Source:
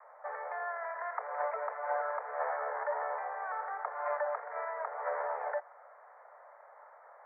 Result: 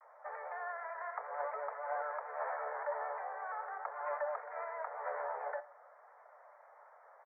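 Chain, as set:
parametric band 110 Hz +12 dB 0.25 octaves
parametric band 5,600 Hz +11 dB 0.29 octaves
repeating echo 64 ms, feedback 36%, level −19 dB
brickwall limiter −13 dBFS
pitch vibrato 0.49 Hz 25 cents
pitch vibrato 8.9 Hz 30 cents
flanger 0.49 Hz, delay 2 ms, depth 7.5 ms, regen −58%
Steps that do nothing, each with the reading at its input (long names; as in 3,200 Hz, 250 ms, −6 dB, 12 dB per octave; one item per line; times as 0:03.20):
parametric band 110 Hz: nothing at its input below 400 Hz
parametric band 5,600 Hz: nothing at its input above 2,200 Hz
brickwall limiter −13 dBFS: peak of its input −21.0 dBFS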